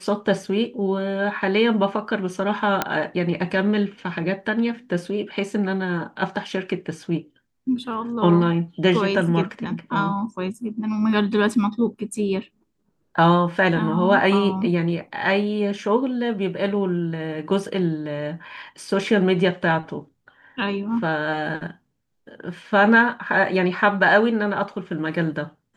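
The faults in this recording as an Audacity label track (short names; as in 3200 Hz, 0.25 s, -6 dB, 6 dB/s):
2.820000	2.820000	pop -5 dBFS
18.570000	18.570000	gap 2.8 ms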